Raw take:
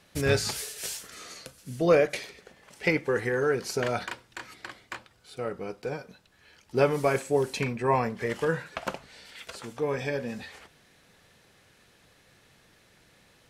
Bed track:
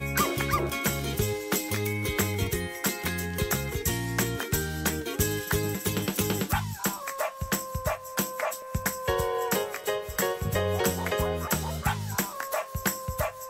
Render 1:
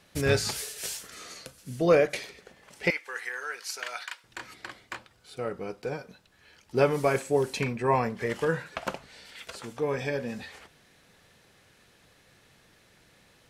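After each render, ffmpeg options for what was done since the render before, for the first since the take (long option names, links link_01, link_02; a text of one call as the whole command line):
ffmpeg -i in.wav -filter_complex "[0:a]asettb=1/sr,asplit=3[link_01][link_02][link_03];[link_01]atrim=end=2.904[link_04];[link_02]atrim=start=2.9:end=4.24,asetpts=PTS-STARTPTS,afade=type=in:duration=0.004:curve=qsin,afade=type=out:start_time=1.336:duration=0.004:curve=qsin,highpass=1400[link_05];[link_03]atrim=start=4.236[link_06];[link_04][link_05]acrossfade=duration=0.004:curve1=hsin:curve2=qsin[link_07];[link_07][link_06]acrossfade=duration=0.004:curve1=qsin:curve2=hsin" out.wav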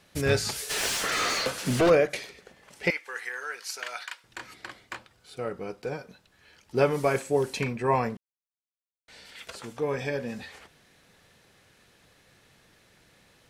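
ffmpeg -i in.wav -filter_complex "[0:a]asplit=3[link_01][link_02][link_03];[link_01]afade=type=out:start_time=0.69:duration=0.02[link_04];[link_02]asplit=2[link_05][link_06];[link_06]highpass=frequency=720:poles=1,volume=35dB,asoftclip=type=tanh:threshold=-14dB[link_07];[link_05][link_07]amix=inputs=2:normalize=0,lowpass=frequency=2200:poles=1,volume=-6dB,afade=type=in:start_time=0.69:duration=0.02,afade=type=out:start_time=1.89:duration=0.02[link_08];[link_03]afade=type=in:start_time=1.89:duration=0.02[link_09];[link_04][link_08][link_09]amix=inputs=3:normalize=0,asplit=3[link_10][link_11][link_12];[link_10]atrim=end=8.17,asetpts=PTS-STARTPTS,afade=type=out:start_time=8.166:duration=0.004:curve=hsin[link_13];[link_11]atrim=start=8.17:end=9.08,asetpts=PTS-STARTPTS,volume=0[link_14];[link_12]atrim=start=9.08,asetpts=PTS-STARTPTS,afade=type=in:duration=0.004:curve=hsin[link_15];[link_13][link_14][link_15]concat=n=3:v=0:a=1" out.wav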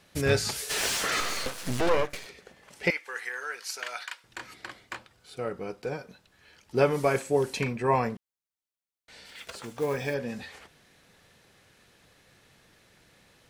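ffmpeg -i in.wav -filter_complex "[0:a]asettb=1/sr,asplit=3[link_01][link_02][link_03];[link_01]atrim=end=1.204[link_04];[link_02]atrim=start=1.2:end=2.26,asetpts=PTS-STARTPTS,afade=type=in:duration=0.004:curve=qsin,afade=type=out:start_time=1.056:duration=0.004:curve=qsin,aeval=exprs='max(val(0),0)':channel_layout=same[link_05];[link_03]atrim=start=2.256[link_06];[link_04][link_05]acrossfade=duration=0.004:curve1=hsin:curve2=qsin[link_07];[link_07][link_06]acrossfade=duration=0.004:curve1=qsin:curve2=hsin,asplit=3[link_08][link_09][link_10];[link_08]afade=type=out:start_time=9.27:duration=0.02[link_11];[link_09]acrusher=bits=5:mode=log:mix=0:aa=0.000001,afade=type=in:start_time=9.27:duration=0.02,afade=type=out:start_time=10.13:duration=0.02[link_12];[link_10]afade=type=in:start_time=10.13:duration=0.02[link_13];[link_11][link_12][link_13]amix=inputs=3:normalize=0" out.wav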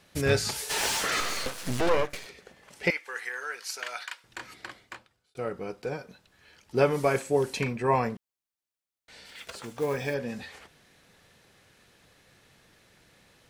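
ffmpeg -i in.wav -filter_complex "[0:a]asettb=1/sr,asplit=3[link_01][link_02][link_03];[link_01]atrim=end=0.524[link_04];[link_02]atrim=start=0.52:end=1.01,asetpts=PTS-STARTPTS,afade=type=in:duration=0.004:curve=qsin,afade=type=out:start_time=0.486:duration=0.004:curve=qsin,equalizer=frequency=880:width=6.8:gain=11.5[link_05];[link_03]atrim=start=1.006[link_06];[link_04][link_05]acrossfade=duration=0.004:curve1=hsin:curve2=qsin[link_07];[link_07][link_06]acrossfade=duration=0.004:curve1=qsin:curve2=hsin,asplit=2[link_08][link_09];[link_08]atrim=end=5.35,asetpts=PTS-STARTPTS,afade=type=out:start_time=4.64:duration=0.71[link_10];[link_09]atrim=start=5.35,asetpts=PTS-STARTPTS,afade=type=in:duration=0.004:curve=hsin[link_11];[link_10][link_11]concat=n=2:v=0:a=1" out.wav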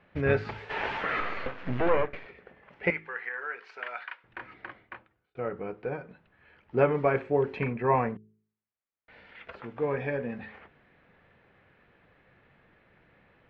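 ffmpeg -i in.wav -af "lowpass=frequency=2400:width=0.5412,lowpass=frequency=2400:width=1.3066,bandreject=frequency=53.65:width_type=h:width=4,bandreject=frequency=107.3:width_type=h:width=4,bandreject=frequency=160.95:width_type=h:width=4,bandreject=frequency=214.6:width_type=h:width=4,bandreject=frequency=268.25:width_type=h:width=4,bandreject=frequency=321.9:width_type=h:width=4,bandreject=frequency=375.55:width_type=h:width=4,bandreject=frequency=429.2:width_type=h:width=4" out.wav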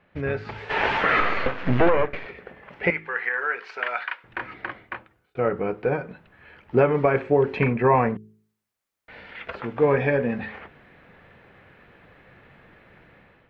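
ffmpeg -i in.wav -af "alimiter=limit=-18dB:level=0:latency=1:release=352,dynaudnorm=framelen=240:gausssize=5:maxgain=10dB" out.wav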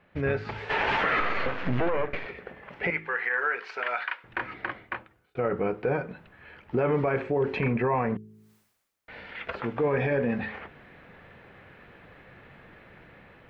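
ffmpeg -i in.wav -af "alimiter=limit=-17dB:level=0:latency=1:release=42,areverse,acompressor=mode=upward:threshold=-47dB:ratio=2.5,areverse" out.wav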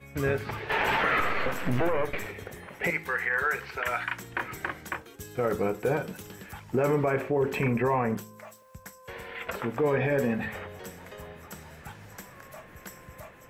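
ffmpeg -i in.wav -i bed.wav -filter_complex "[1:a]volume=-17dB[link_01];[0:a][link_01]amix=inputs=2:normalize=0" out.wav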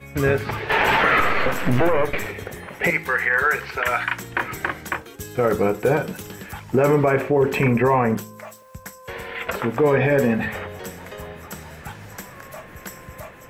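ffmpeg -i in.wav -af "volume=8dB" out.wav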